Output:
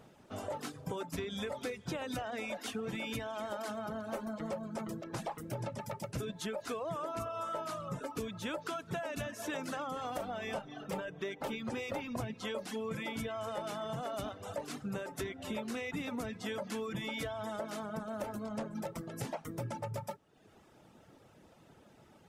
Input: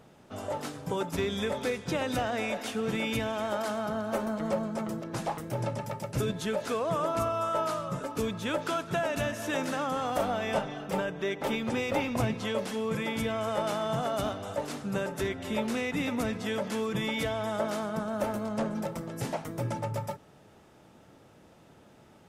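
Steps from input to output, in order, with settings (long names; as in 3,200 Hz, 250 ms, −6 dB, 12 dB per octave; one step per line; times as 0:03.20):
reverb reduction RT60 0.76 s
downward compressor, threshold −33 dBFS, peak gain reduction 9.5 dB
level −2 dB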